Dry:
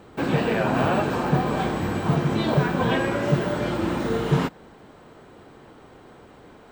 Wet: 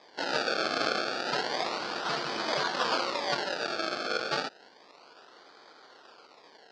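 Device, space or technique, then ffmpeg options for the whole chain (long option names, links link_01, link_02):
circuit-bent sampling toy: -af "acrusher=samples=31:mix=1:aa=0.000001:lfo=1:lforange=31:lforate=0.31,highpass=590,equalizer=frequency=1400:width_type=q:width=4:gain=5,equalizer=frequency=2100:width_type=q:width=4:gain=-3,equalizer=frequency=4600:width_type=q:width=4:gain=10,lowpass=frequency=5500:width=0.5412,lowpass=frequency=5500:width=1.3066,volume=-3dB"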